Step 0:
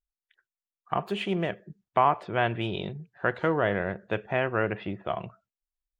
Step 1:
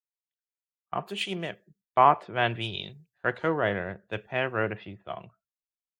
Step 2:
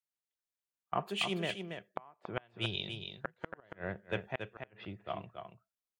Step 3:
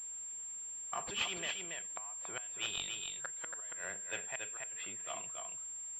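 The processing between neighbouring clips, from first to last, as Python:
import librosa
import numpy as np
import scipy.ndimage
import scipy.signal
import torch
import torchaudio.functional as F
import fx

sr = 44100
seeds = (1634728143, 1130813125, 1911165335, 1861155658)

y1 = fx.high_shelf(x, sr, hz=3500.0, db=10.5)
y1 = fx.band_widen(y1, sr, depth_pct=100)
y1 = y1 * librosa.db_to_amplitude(-3.0)
y2 = fx.gate_flip(y1, sr, shuts_db=-16.0, range_db=-36)
y2 = y2 + 10.0 ** (-7.0 / 20.0) * np.pad(y2, (int(280 * sr / 1000.0), 0))[:len(y2)]
y2 = y2 * librosa.db_to_amplitude(-2.5)
y3 = np.diff(y2, prepend=0.0)
y3 = fx.power_curve(y3, sr, exponent=0.7)
y3 = fx.pwm(y3, sr, carrier_hz=7400.0)
y3 = y3 * librosa.db_to_amplitude(5.5)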